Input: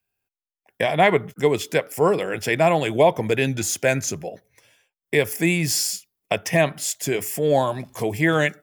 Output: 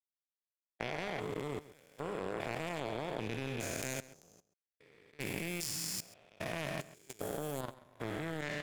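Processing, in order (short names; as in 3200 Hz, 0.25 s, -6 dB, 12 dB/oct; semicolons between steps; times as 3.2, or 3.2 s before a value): stepped spectrum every 0.4 s; power-law curve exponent 2; level quantiser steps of 24 dB; outdoor echo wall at 23 m, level -17 dB; gain +9 dB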